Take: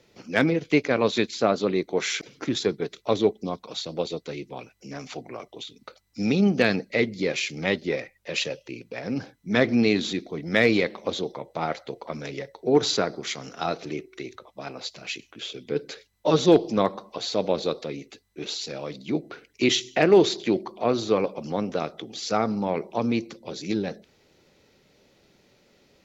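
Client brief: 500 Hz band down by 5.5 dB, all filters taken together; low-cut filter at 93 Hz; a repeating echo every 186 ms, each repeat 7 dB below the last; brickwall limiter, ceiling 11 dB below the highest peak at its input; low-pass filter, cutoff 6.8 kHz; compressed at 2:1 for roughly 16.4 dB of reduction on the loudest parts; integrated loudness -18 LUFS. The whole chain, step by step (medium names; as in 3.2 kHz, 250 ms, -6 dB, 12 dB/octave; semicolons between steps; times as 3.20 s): high-pass 93 Hz; low-pass 6.8 kHz; peaking EQ 500 Hz -7 dB; compression 2:1, threshold -48 dBFS; peak limiter -33.5 dBFS; feedback delay 186 ms, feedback 45%, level -7 dB; trim +26 dB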